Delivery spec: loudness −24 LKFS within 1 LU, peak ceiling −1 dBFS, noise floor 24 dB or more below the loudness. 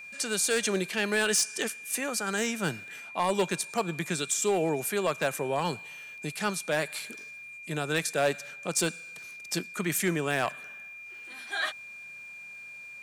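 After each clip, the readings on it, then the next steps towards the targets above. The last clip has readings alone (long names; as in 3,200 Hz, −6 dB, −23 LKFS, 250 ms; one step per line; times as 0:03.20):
share of clipped samples 0.3%; peaks flattened at −19.0 dBFS; interfering tone 2,400 Hz; level of the tone −42 dBFS; integrated loudness −29.5 LKFS; sample peak −19.0 dBFS; target loudness −24.0 LKFS
→ clipped peaks rebuilt −19 dBFS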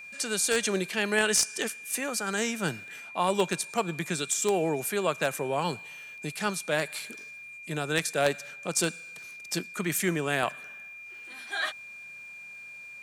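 share of clipped samples 0.0%; interfering tone 2,400 Hz; level of the tone −42 dBFS
→ notch filter 2,400 Hz, Q 30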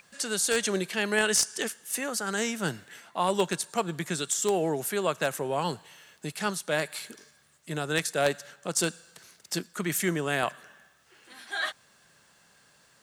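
interfering tone none found; integrated loudness −29.0 LKFS; sample peak −10.0 dBFS; target loudness −24.0 LKFS
→ level +5 dB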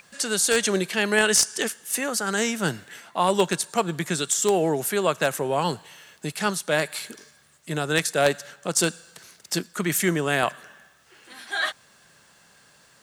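integrated loudness −24.0 LKFS; sample peak −5.0 dBFS; background noise floor −57 dBFS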